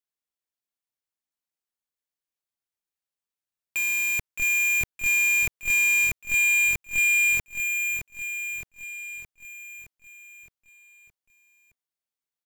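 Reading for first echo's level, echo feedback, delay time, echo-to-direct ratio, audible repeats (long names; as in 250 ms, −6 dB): −8.0 dB, 57%, 617 ms, −6.5 dB, 6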